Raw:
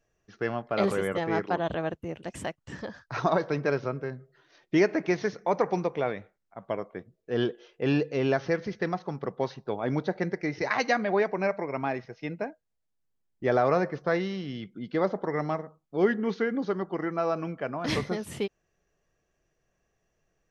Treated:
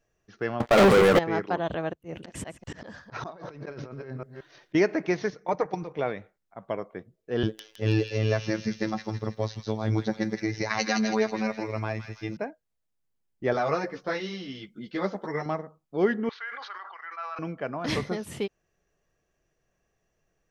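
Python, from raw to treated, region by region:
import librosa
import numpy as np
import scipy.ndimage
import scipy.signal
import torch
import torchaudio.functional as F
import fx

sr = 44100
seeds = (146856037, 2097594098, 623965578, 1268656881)

y = fx.chain(x, sr, fx.bass_treble(bass_db=-1, treble_db=-14),
    fx.leveller(passes=5), at=(0.6, 1.19))
y = fx.chain(y, sr, fx.reverse_delay(ms=177, wet_db=-13.5),
    fx.auto_swell(attack_ms=153.0),
    fx.over_compress(threshold_db=-39.0, ratio=-1.0), at=(1.93, 4.75))
y = fx.chain(y, sr, fx.level_steps(step_db=12),
    fx.comb(ms=6.5, depth=0.5), at=(5.3, 5.99))
y = fx.chain(y, sr, fx.bass_treble(bass_db=12, treble_db=11),
    fx.robotise(hz=109.0),
    fx.echo_wet_highpass(ms=162, feedback_pct=45, hz=2200.0, wet_db=-3.5), at=(7.43, 12.37))
y = fx.chain(y, sr, fx.high_shelf(hz=2300.0, db=9.0),
    fx.ensemble(), at=(13.53, 15.46))
y = fx.chain(y, sr, fx.highpass(hz=1100.0, slope=24),
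    fx.air_absorb(metres=230.0),
    fx.sustainer(db_per_s=32.0), at=(16.29, 17.39))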